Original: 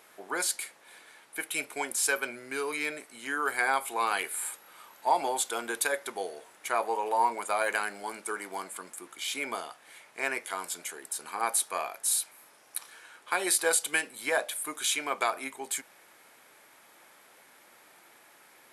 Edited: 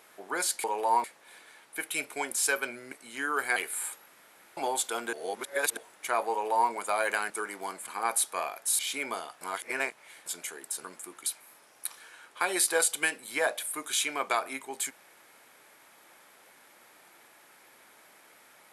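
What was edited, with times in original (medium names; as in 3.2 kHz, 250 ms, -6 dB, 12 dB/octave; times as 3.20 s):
2.52–3.01 s: delete
3.65–4.17 s: delete
4.67–5.18 s: room tone
5.74–6.38 s: reverse
6.92–7.32 s: copy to 0.64 s
7.91–8.21 s: delete
8.78–9.20 s: swap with 11.25–12.17 s
9.82–10.67 s: reverse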